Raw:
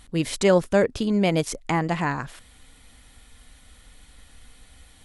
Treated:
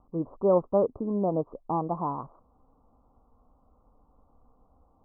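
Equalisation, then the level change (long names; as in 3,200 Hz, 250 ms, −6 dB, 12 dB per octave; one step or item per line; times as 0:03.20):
Butterworth low-pass 1,200 Hz 96 dB per octave
low-shelf EQ 190 Hz −11.5 dB
−2.0 dB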